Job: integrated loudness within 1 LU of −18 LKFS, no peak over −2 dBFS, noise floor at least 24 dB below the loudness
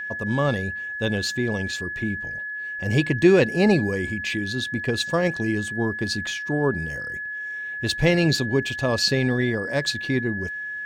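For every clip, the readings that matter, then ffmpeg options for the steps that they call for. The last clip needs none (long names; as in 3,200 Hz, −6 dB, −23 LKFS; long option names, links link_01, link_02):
interfering tone 1,700 Hz; level of the tone −29 dBFS; integrated loudness −23.5 LKFS; sample peak −5.0 dBFS; target loudness −18.0 LKFS
→ -af "bandreject=frequency=1700:width=30"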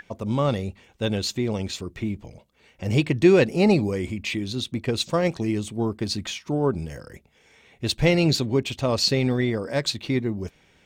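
interfering tone none found; integrated loudness −24.0 LKFS; sample peak −5.0 dBFS; target loudness −18.0 LKFS
→ -af "volume=6dB,alimiter=limit=-2dB:level=0:latency=1"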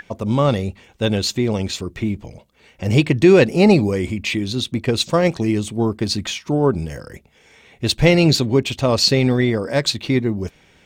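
integrated loudness −18.0 LKFS; sample peak −2.0 dBFS; background noise floor −54 dBFS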